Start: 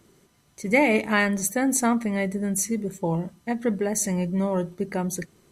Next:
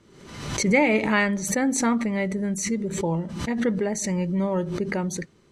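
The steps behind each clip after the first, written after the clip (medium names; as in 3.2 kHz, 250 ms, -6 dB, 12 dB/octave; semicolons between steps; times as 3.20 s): low-pass 5.7 kHz 12 dB/octave; band-stop 710 Hz, Q 12; swell ahead of each attack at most 57 dB/s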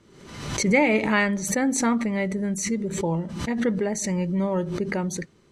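no audible change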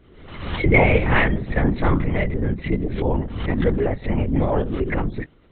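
LPC vocoder at 8 kHz whisper; trim +4.5 dB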